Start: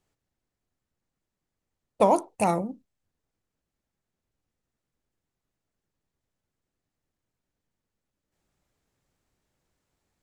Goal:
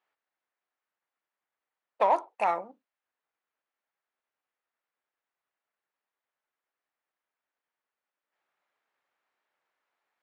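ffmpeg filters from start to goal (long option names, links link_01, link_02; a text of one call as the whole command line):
ffmpeg -i in.wav -filter_complex "[0:a]lowpass=2200,asplit=2[link_01][link_02];[link_02]asoftclip=type=tanh:threshold=-17dB,volume=-3.5dB[link_03];[link_01][link_03]amix=inputs=2:normalize=0,highpass=930" out.wav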